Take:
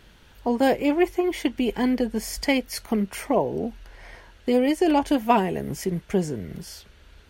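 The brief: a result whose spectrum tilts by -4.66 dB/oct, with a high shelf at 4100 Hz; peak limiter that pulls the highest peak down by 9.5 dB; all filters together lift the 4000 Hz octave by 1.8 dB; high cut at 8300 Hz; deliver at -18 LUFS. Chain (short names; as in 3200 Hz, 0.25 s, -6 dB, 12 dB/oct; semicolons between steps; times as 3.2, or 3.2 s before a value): LPF 8300 Hz; bell 4000 Hz +7.5 dB; high shelf 4100 Hz -7.5 dB; gain +8.5 dB; limiter -6 dBFS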